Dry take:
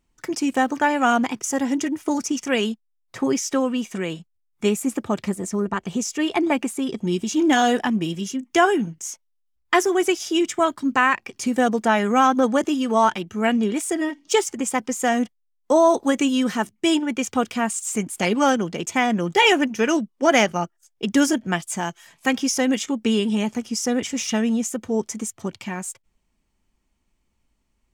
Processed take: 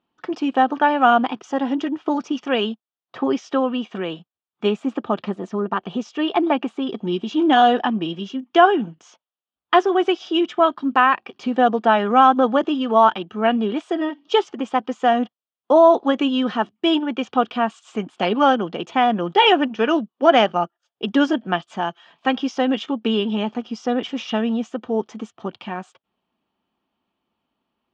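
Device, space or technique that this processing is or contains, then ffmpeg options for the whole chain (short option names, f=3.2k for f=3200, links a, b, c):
kitchen radio: -af "highpass=210,equalizer=f=740:t=q:w=4:g=5,equalizer=f=1.2k:t=q:w=4:g=4,equalizer=f=2.1k:t=q:w=4:g=-10,equalizer=f=3.2k:t=q:w=4:g=4,lowpass=f=3.6k:w=0.5412,lowpass=f=3.6k:w=1.3066,volume=1.5dB"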